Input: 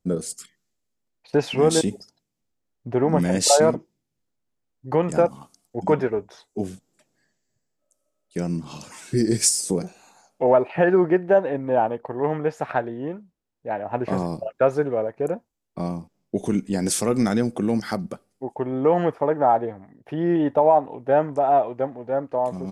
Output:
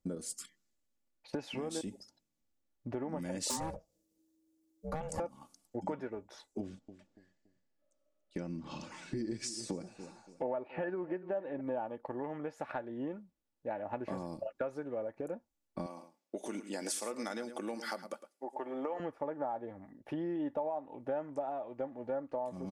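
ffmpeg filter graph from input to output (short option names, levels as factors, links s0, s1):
-filter_complex "[0:a]asettb=1/sr,asplit=3[s0][s1][s2];[s0]atrim=end=3.504[s3];[s1]atrim=start=3.5:end=5.2,asetpts=PTS-STARTPTS,afade=t=in:d=0.004:c=qsin,afade=t=out:st=1.696:d=0.004:c=qsin,bass=f=250:g=8,treble=f=4000:g=13,aeval=exprs='val(0)*sin(2*PI*320*n/s)':c=same,volume=3.16,asoftclip=hard,volume=0.316[s4];[s2]atrim=start=5.196[s5];[s3][s4]acrossfade=d=0.004:c1=hsin:c2=qsin[s6];[s6][s5]acrossfade=d=0.004:c1=qsin:c2=hsin,asettb=1/sr,asplit=3[s7][s8][s9];[s7]atrim=end=6.604[s10];[s8]atrim=start=6.6:end=11.61,asetpts=PTS-STARTPTS,afade=t=in:d=0.004:c=qsin,afade=t=out:st=5.006:d=0.004:c=qsin,lowpass=4300,aecho=1:1:284|568|852:0.1|0.033|0.0109,atrim=end_sample=220941[s11];[s9]atrim=start=11.606[s12];[s10][s11]acrossfade=d=0.004:c1=hsin:c2=qsin[s13];[s13][s12]acrossfade=d=0.004:c1=qsin:c2=hsin,asettb=1/sr,asplit=3[s14][s15][s16];[s14]atrim=end=15.864[s17];[s15]atrim=start=15.86:end=19,asetpts=PTS-STARTPTS,afade=t=in:d=0.004:c=qsin,afade=t=out:st=3.136:d=0.004:c=qsin,highpass=480,aecho=1:1:108:0.211,atrim=end_sample=138474[s18];[s16]atrim=start=18.996[s19];[s17][s18]acrossfade=d=0.004:c1=hsin:c2=qsin[s20];[s20][s19]acrossfade=d=0.004:c1=qsin:c2=hsin,acompressor=threshold=0.0316:ratio=6,aecho=1:1:3.5:0.4,volume=0.531"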